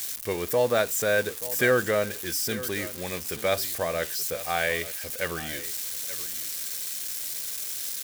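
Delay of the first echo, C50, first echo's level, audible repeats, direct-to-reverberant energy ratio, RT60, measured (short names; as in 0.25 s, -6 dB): 0.881 s, none, -15.5 dB, 1, none, none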